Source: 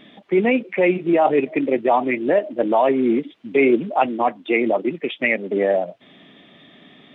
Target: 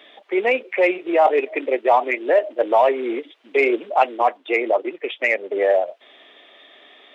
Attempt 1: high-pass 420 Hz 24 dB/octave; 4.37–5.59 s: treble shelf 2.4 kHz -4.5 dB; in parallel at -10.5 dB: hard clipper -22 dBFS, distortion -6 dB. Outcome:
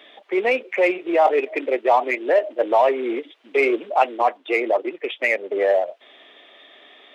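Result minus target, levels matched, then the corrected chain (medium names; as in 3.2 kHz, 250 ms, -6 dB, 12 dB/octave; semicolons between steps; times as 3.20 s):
hard clipper: distortion +9 dB
high-pass 420 Hz 24 dB/octave; 4.37–5.59 s: treble shelf 2.4 kHz -4.5 dB; in parallel at -10.5 dB: hard clipper -13.5 dBFS, distortion -15 dB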